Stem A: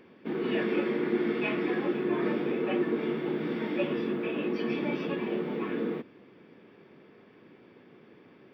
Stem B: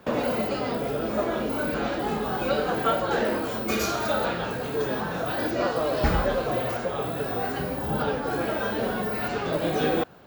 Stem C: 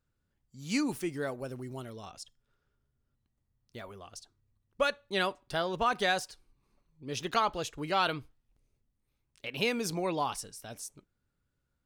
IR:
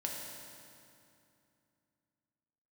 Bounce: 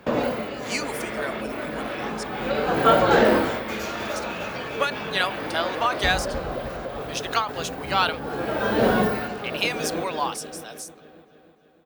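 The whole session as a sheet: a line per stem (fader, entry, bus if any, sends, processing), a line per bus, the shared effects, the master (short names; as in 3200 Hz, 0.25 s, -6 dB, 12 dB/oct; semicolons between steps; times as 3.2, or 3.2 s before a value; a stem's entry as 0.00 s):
+0.5 dB, 0.00 s, no send, no echo send, HPF 790 Hz 24 dB/oct; negative-ratio compressor -44 dBFS
+2.5 dB, 0.00 s, no send, echo send -19 dB, high shelf 7200 Hz -5.5 dB; auto duck -14 dB, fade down 0.30 s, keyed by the third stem
+2.0 dB, 0.00 s, no send, no echo send, HPF 740 Hz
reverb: off
echo: feedback echo 0.303 s, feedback 56%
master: AGC gain up to 6 dB; ending taper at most 120 dB/s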